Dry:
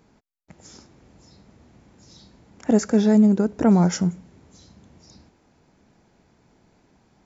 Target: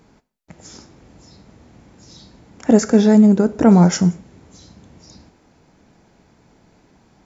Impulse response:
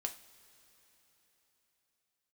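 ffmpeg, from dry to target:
-filter_complex "[0:a]asplit=2[link_01][link_02];[1:a]atrim=start_sample=2205,atrim=end_sample=6174,asetrate=31752,aresample=44100[link_03];[link_02][link_03]afir=irnorm=-1:irlink=0,volume=-6.5dB[link_04];[link_01][link_04]amix=inputs=2:normalize=0,volume=2.5dB"

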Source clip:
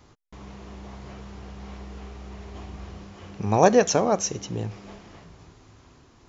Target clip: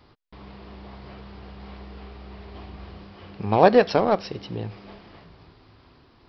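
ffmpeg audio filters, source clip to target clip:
ffmpeg -i in.wav -filter_complex "[0:a]bass=frequency=250:gain=-2,treble=frequency=4000:gain=3,asplit=2[link_01][link_02];[link_02]acrusher=bits=2:mix=0:aa=0.5,volume=-12dB[link_03];[link_01][link_03]amix=inputs=2:normalize=0,aresample=11025,aresample=44100" out.wav

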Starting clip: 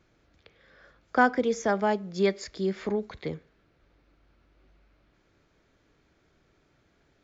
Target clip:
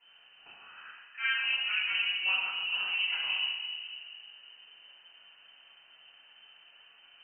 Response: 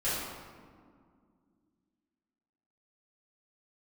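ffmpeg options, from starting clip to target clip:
-filter_complex "[0:a]highshelf=frequency=2300:gain=5.5,areverse,acompressor=threshold=-33dB:ratio=20,areverse,tremolo=f=250:d=0.519[link_01];[1:a]atrim=start_sample=2205[link_02];[link_01][link_02]afir=irnorm=-1:irlink=0,lowpass=frequency=2600:width_type=q:width=0.5098,lowpass=frequency=2600:width_type=q:width=0.6013,lowpass=frequency=2600:width_type=q:width=0.9,lowpass=frequency=2600:width_type=q:width=2.563,afreqshift=-3100"

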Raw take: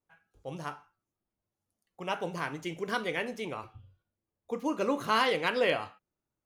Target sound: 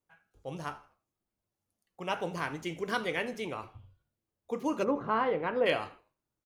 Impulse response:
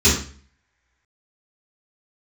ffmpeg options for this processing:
-filter_complex "[0:a]asplit=3[link_01][link_02][link_03];[link_01]afade=type=out:start_time=4.83:duration=0.02[link_04];[link_02]lowpass=1200,afade=type=in:start_time=4.83:duration=0.02,afade=type=out:start_time=5.65:duration=0.02[link_05];[link_03]afade=type=in:start_time=5.65:duration=0.02[link_06];[link_04][link_05][link_06]amix=inputs=3:normalize=0,asplit=4[link_07][link_08][link_09][link_10];[link_08]adelay=80,afreqshift=-77,volume=-21dB[link_11];[link_09]adelay=160,afreqshift=-154,volume=-29dB[link_12];[link_10]adelay=240,afreqshift=-231,volume=-36.9dB[link_13];[link_07][link_11][link_12][link_13]amix=inputs=4:normalize=0"

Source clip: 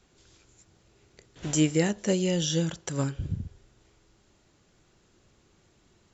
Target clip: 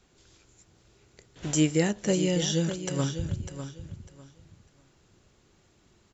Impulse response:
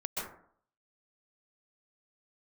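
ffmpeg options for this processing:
-af "aecho=1:1:600|1200|1800:0.316|0.0727|0.0167"

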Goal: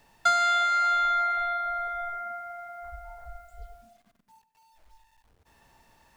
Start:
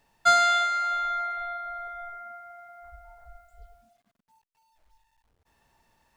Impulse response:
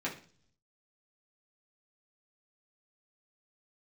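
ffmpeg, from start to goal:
-filter_complex "[0:a]acrossover=split=1000|2000[link_01][link_02][link_03];[link_01]acompressor=threshold=-42dB:ratio=4[link_04];[link_02]acompressor=threshold=-31dB:ratio=4[link_05];[link_03]acompressor=threshold=-41dB:ratio=4[link_06];[link_04][link_05][link_06]amix=inputs=3:normalize=0,asplit=2[link_07][link_08];[1:a]atrim=start_sample=2205,adelay=73[link_09];[link_08][link_09]afir=irnorm=-1:irlink=0,volume=-18dB[link_10];[link_07][link_10]amix=inputs=2:normalize=0,volume=6.5dB"

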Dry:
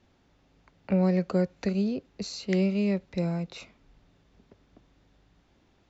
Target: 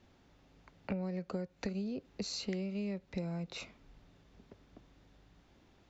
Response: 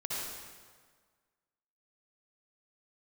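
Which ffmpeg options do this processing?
-af "acompressor=threshold=-34dB:ratio=10,aeval=exprs='0.0631*(cos(1*acos(clip(val(0)/0.0631,-1,1)))-cos(1*PI/2))+0.00141*(cos(2*acos(clip(val(0)/0.0631,-1,1)))-cos(2*PI/2))':channel_layout=same"

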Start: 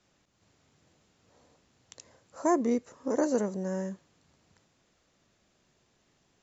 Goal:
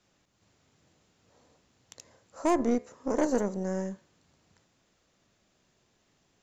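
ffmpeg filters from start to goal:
ffmpeg -i in.wav -af "bandreject=frequency=72.1:width_type=h:width=4,bandreject=frequency=144.2:width_type=h:width=4,bandreject=frequency=216.3:width_type=h:width=4,bandreject=frequency=288.4:width_type=h:width=4,bandreject=frequency=360.5:width_type=h:width=4,bandreject=frequency=432.6:width_type=h:width=4,bandreject=frequency=504.7:width_type=h:width=4,bandreject=frequency=576.8:width_type=h:width=4,bandreject=frequency=648.9:width_type=h:width=4,bandreject=frequency=721:width_type=h:width=4,bandreject=frequency=793.1:width_type=h:width=4,bandreject=frequency=865.2:width_type=h:width=4,bandreject=frequency=937.3:width_type=h:width=4,bandreject=frequency=1009.4:width_type=h:width=4,bandreject=frequency=1081.5:width_type=h:width=4,bandreject=frequency=1153.6:width_type=h:width=4,bandreject=frequency=1225.7:width_type=h:width=4,bandreject=frequency=1297.8:width_type=h:width=4,bandreject=frequency=1369.9:width_type=h:width=4,bandreject=frequency=1442:width_type=h:width=4,bandreject=frequency=1514.1:width_type=h:width=4,bandreject=frequency=1586.2:width_type=h:width=4,bandreject=frequency=1658.3:width_type=h:width=4,bandreject=frequency=1730.4:width_type=h:width=4,bandreject=frequency=1802.5:width_type=h:width=4,bandreject=frequency=1874.6:width_type=h:width=4,bandreject=frequency=1946.7:width_type=h:width=4,bandreject=frequency=2018.8:width_type=h:width=4,bandreject=frequency=2090.9:width_type=h:width=4,bandreject=frequency=2163:width_type=h:width=4,bandreject=frequency=2235.1:width_type=h:width=4,bandreject=frequency=2307.2:width_type=h:width=4,bandreject=frequency=2379.3:width_type=h:width=4,bandreject=frequency=2451.4:width_type=h:width=4,aeval=exprs='0.211*(cos(1*acos(clip(val(0)/0.211,-1,1)))-cos(1*PI/2))+0.0168*(cos(6*acos(clip(val(0)/0.211,-1,1)))-cos(6*PI/2))':channel_layout=same" out.wav

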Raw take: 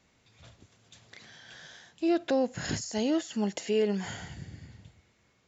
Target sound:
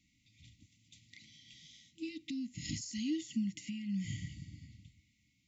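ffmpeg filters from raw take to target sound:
ffmpeg -i in.wav -filter_complex "[0:a]asettb=1/sr,asplit=3[link_01][link_02][link_03];[link_01]atrim=end=3.214[link_04];[link_02]atrim=start=3.21:end=4.29,asetpts=PTS-STARTPTS,afade=type=in:duration=0.004:curve=qsin,afade=type=out:start_time=1.076:duration=0.004:curve=qsin,equalizer=frequency=125:width_type=o:width=1:gain=12,equalizer=frequency=500:width_type=o:width=1:gain=5,equalizer=frequency=1000:width_type=o:width=1:gain=7,equalizer=frequency=4000:width_type=o:width=1:gain=-3[link_05];[link_03]atrim=start=4.286[link_06];[link_04][link_05]acrossfade=duration=0.004:curve1=hsin:curve2=qsin[link_07];[link_07][link_06]acrossfade=duration=0.004:curve1=qsin:curve2=hsin,alimiter=limit=-20.5dB:level=0:latency=1:release=280,afftfilt=real='re*(1-between(b*sr/4096,330,1900))':imag='im*(1-between(b*sr/4096,330,1900))':win_size=4096:overlap=0.75,volume=-5dB" out.wav

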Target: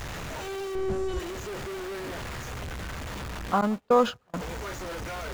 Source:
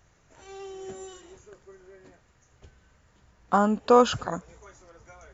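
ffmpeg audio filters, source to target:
ffmpeg -i in.wav -filter_complex "[0:a]aeval=exprs='val(0)+0.5*0.0531*sgn(val(0))':channel_layout=same,asettb=1/sr,asplit=3[link_01][link_02][link_03];[link_01]atrim=end=0.754[link_04];[link_02]atrim=start=0.75:end=1.2,asetpts=PTS-STARTPTS,afade=type=in:duration=0.004:curve=qsin,afade=type=out:start_time=0.446:duration=0.004:curve=qsin,aemphasis=mode=reproduction:type=riaa[link_05];[link_03]atrim=start=1.196[link_06];[link_04][link_05]acrossfade=duration=0.004:curve1=hsin:curve2=qsin[link_07];[link_07][link_06]acrossfade=duration=0.004:curve1=qsin:curve2=hsin,asplit=2[link_08][link_09];[link_09]aecho=0:1:173|346|519|692:0.0794|0.0405|0.0207|0.0105[link_10];[link_08][link_10]amix=inputs=2:normalize=0,acrossover=split=4200[link_11][link_12];[link_12]acompressor=threshold=-41dB:ratio=4:attack=1:release=60[link_13];[link_11][link_13]amix=inputs=2:normalize=0,asettb=1/sr,asplit=3[link_14][link_15][link_16];[link_14]atrim=end=3.614[link_17];[link_15]atrim=start=3.61:end=4.34,asetpts=PTS-STARTPTS,afade=type=in:duration=0.004:curve=qsin,afade=type=out:start_time=0.726:duration=0.004:curve=qsin,agate=range=-36dB:threshold=-21dB:ratio=16:detection=peak[link_18];[link_16]atrim=start=4.336[link_19];[link_17][link_18]acrossfade=duration=0.004:curve1=hsin:curve2=qsin[link_20];[link_20][link_19]acrossfade=duration=0.004:curve1=qsin:curve2=hsin,volume=-4dB" out.wav

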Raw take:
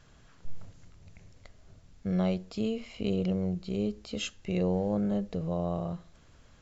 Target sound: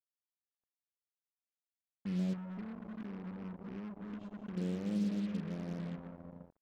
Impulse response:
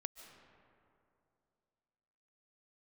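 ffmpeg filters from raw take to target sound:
-filter_complex "[0:a]bandpass=frequency=230:width_type=q:width=2.6:csg=0,aecho=1:1:77:0.168[link_01];[1:a]atrim=start_sample=2205[link_02];[link_01][link_02]afir=irnorm=-1:irlink=0,asettb=1/sr,asplit=3[link_03][link_04][link_05];[link_03]atrim=end=2.334[link_06];[link_04]atrim=start=2.33:end=4.57,asetpts=PTS-STARTPTS,afade=type=in:duration=0.004:curve=qsin,afade=type=out:start_time=2.236:duration=0.004:curve=qsin,acompressor=threshold=-42dB:ratio=12[link_07];[link_05]atrim=start=4.566[link_08];[link_06][link_07]acrossfade=duration=0.004:curve1=hsin:curve2=qsin[link_09];[link_09][link_08]acrossfade=duration=0.004:curve1=qsin:curve2=hsin,acrusher=bits=7:mix=0:aa=0.5,volume=1dB"

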